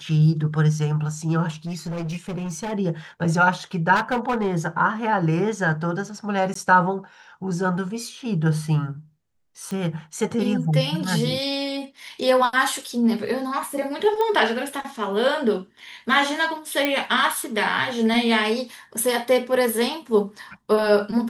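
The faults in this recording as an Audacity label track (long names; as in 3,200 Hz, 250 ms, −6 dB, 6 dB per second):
1.650000	2.730000	clipping −25.5 dBFS
3.950000	4.540000	clipping −18 dBFS
6.540000	6.550000	drop-out 14 ms
9.710000	9.710000	click −20 dBFS
14.210000	14.210000	click −14 dBFS
16.850000	16.850000	click −8 dBFS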